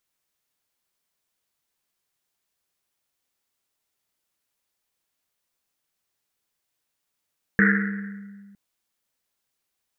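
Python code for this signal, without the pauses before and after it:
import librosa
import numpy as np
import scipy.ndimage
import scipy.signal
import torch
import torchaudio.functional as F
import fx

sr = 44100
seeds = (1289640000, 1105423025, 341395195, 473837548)

y = fx.risset_drum(sr, seeds[0], length_s=0.96, hz=200.0, decay_s=1.97, noise_hz=1700.0, noise_width_hz=560.0, noise_pct=45)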